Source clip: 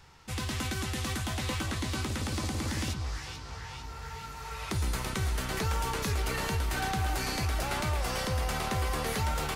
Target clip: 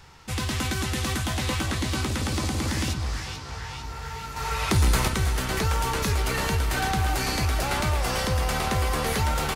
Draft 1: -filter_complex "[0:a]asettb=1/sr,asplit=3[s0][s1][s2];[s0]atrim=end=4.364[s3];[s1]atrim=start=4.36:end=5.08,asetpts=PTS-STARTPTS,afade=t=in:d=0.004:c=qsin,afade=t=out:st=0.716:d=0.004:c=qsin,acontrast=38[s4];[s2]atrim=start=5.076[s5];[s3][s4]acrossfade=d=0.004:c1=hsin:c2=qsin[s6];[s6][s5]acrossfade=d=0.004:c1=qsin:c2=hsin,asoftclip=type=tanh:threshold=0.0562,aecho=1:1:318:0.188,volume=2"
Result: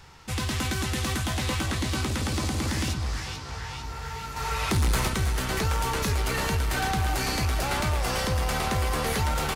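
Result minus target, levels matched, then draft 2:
saturation: distortion +11 dB
-filter_complex "[0:a]asettb=1/sr,asplit=3[s0][s1][s2];[s0]atrim=end=4.364[s3];[s1]atrim=start=4.36:end=5.08,asetpts=PTS-STARTPTS,afade=t=in:d=0.004:c=qsin,afade=t=out:st=0.716:d=0.004:c=qsin,acontrast=38[s4];[s2]atrim=start=5.076[s5];[s3][s4]acrossfade=d=0.004:c1=hsin:c2=qsin[s6];[s6][s5]acrossfade=d=0.004:c1=qsin:c2=hsin,asoftclip=type=tanh:threshold=0.133,aecho=1:1:318:0.188,volume=2"

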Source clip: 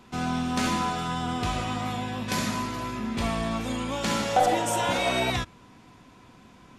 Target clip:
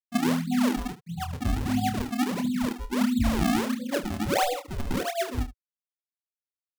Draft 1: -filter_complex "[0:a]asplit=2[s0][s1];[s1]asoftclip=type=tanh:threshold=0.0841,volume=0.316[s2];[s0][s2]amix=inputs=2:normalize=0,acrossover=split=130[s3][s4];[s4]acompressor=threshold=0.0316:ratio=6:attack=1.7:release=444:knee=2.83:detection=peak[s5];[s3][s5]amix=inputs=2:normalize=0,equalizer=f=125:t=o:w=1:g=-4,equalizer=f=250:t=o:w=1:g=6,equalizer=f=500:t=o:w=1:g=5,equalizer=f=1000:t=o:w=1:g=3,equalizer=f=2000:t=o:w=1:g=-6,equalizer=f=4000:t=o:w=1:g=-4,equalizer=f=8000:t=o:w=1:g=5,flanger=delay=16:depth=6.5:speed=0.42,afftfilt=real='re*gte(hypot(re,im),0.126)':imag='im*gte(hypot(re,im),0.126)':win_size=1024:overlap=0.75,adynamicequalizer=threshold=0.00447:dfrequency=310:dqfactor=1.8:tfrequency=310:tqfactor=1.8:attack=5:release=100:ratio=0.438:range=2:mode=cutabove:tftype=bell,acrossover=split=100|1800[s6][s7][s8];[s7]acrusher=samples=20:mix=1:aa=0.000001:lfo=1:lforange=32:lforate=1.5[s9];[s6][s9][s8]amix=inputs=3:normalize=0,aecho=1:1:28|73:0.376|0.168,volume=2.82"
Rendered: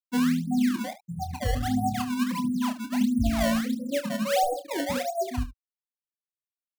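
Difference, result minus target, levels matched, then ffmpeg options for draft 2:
saturation: distortion +10 dB; decimation with a swept rate: distortion -8 dB
-filter_complex "[0:a]asplit=2[s0][s1];[s1]asoftclip=type=tanh:threshold=0.211,volume=0.316[s2];[s0][s2]amix=inputs=2:normalize=0,acrossover=split=130[s3][s4];[s4]acompressor=threshold=0.0316:ratio=6:attack=1.7:release=444:knee=2.83:detection=peak[s5];[s3][s5]amix=inputs=2:normalize=0,equalizer=f=125:t=o:w=1:g=-4,equalizer=f=250:t=o:w=1:g=6,equalizer=f=500:t=o:w=1:g=5,equalizer=f=1000:t=o:w=1:g=3,equalizer=f=2000:t=o:w=1:g=-6,equalizer=f=4000:t=o:w=1:g=-4,equalizer=f=8000:t=o:w=1:g=5,flanger=delay=16:depth=6.5:speed=0.42,afftfilt=real='re*gte(hypot(re,im),0.126)':imag='im*gte(hypot(re,im),0.126)':win_size=1024:overlap=0.75,adynamicequalizer=threshold=0.00447:dfrequency=310:dqfactor=1.8:tfrequency=310:tqfactor=1.8:attack=5:release=100:ratio=0.438:range=2:mode=cutabove:tftype=bell,acrossover=split=100|1800[s6][s7][s8];[s7]acrusher=samples=52:mix=1:aa=0.000001:lfo=1:lforange=83.2:lforate=1.5[s9];[s6][s9][s8]amix=inputs=3:normalize=0,aecho=1:1:28|73:0.376|0.168,volume=2.82"

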